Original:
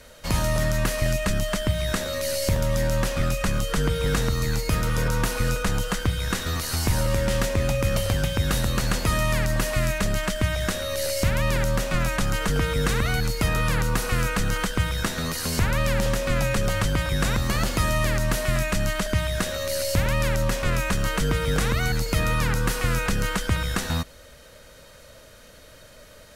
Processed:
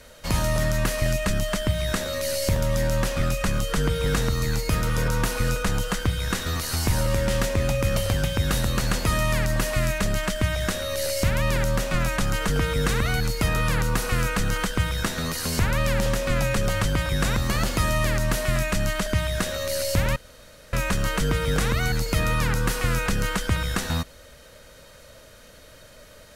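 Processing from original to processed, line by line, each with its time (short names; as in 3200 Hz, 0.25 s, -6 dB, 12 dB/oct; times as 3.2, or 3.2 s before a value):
20.16–20.73 room tone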